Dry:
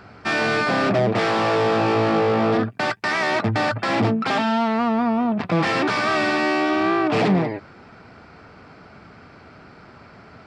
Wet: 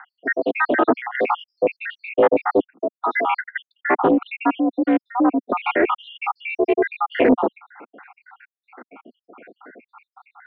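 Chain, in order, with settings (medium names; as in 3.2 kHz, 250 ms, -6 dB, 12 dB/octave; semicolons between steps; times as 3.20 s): random holes in the spectrogram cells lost 81%; mistuned SSB +60 Hz 190–2600 Hz; loudspeaker Doppler distortion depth 0.28 ms; trim +7 dB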